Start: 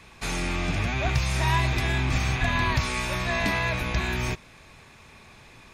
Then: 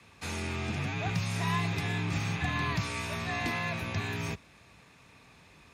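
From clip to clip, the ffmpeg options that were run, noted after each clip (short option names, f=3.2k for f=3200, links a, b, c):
-af "afreqshift=41,volume=-7dB"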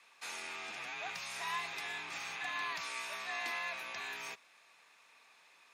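-af "highpass=770,volume=-4dB"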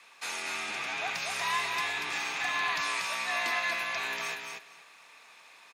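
-af "aecho=1:1:237|474|711:0.596|0.0953|0.0152,volume=7.5dB"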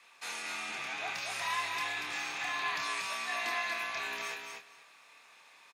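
-filter_complex "[0:a]asplit=2[a][b];[b]adelay=27,volume=-5dB[c];[a][c]amix=inputs=2:normalize=0,volume=-5dB"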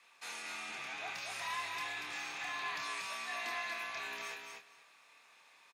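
-af "asoftclip=type=tanh:threshold=-24dB,volume=-4.5dB"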